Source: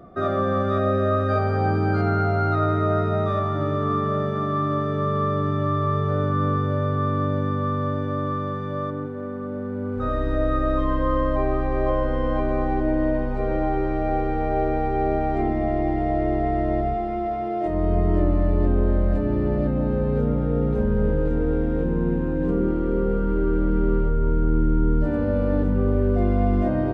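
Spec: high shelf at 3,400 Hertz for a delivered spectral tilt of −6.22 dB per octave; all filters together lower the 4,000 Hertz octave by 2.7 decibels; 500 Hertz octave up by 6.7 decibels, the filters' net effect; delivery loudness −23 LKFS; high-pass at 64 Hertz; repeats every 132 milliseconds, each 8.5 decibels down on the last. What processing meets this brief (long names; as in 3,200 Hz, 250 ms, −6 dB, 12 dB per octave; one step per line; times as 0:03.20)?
high-pass filter 64 Hz
parametric band 500 Hz +8.5 dB
high-shelf EQ 3,400 Hz +4.5 dB
parametric band 4,000 Hz −6 dB
repeating echo 132 ms, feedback 38%, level −8.5 dB
level −4 dB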